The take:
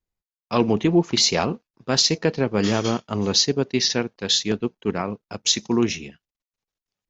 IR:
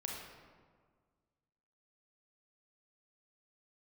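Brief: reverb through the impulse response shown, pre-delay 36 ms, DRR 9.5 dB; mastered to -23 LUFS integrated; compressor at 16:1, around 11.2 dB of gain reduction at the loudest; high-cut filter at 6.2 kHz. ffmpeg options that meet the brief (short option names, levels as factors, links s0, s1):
-filter_complex "[0:a]lowpass=6200,acompressor=threshold=0.0562:ratio=16,asplit=2[s0][s1];[1:a]atrim=start_sample=2205,adelay=36[s2];[s1][s2]afir=irnorm=-1:irlink=0,volume=0.316[s3];[s0][s3]amix=inputs=2:normalize=0,volume=2.37"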